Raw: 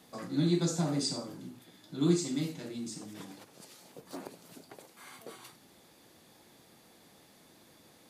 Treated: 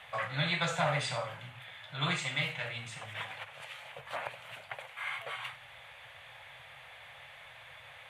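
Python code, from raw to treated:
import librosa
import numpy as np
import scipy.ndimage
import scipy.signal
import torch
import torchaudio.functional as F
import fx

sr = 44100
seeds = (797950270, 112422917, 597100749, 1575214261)

y = fx.curve_eq(x, sr, hz=(130.0, 190.0, 340.0, 550.0, 1200.0, 2200.0, 3200.0, 4900.0, 9000.0, 13000.0), db=(0, -23, -30, -1, 4, 11, 7, -17, -12, -17))
y = F.gain(torch.from_numpy(y), 7.5).numpy()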